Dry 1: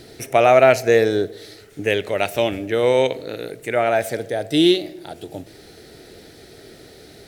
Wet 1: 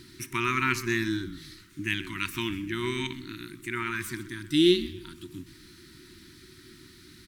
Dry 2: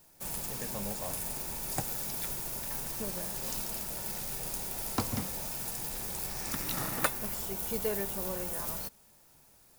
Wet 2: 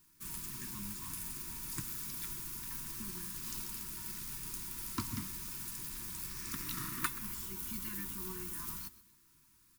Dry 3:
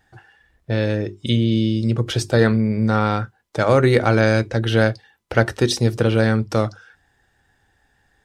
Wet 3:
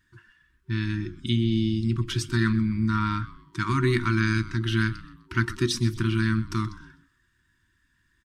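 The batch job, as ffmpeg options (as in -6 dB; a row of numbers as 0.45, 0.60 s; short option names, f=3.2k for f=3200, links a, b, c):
-filter_complex "[0:a]asplit=4[a][b][c][d];[b]adelay=127,afreqshift=-130,volume=-17dB[e];[c]adelay=254,afreqshift=-260,volume=-25.9dB[f];[d]adelay=381,afreqshift=-390,volume=-34.7dB[g];[a][e][f][g]amix=inputs=4:normalize=0,afftfilt=real='re*(1-between(b*sr/4096,380,920))':imag='im*(1-between(b*sr/4096,380,920))':win_size=4096:overlap=0.75,volume=-5.5dB"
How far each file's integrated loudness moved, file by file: -10.0, -5.5, -7.0 LU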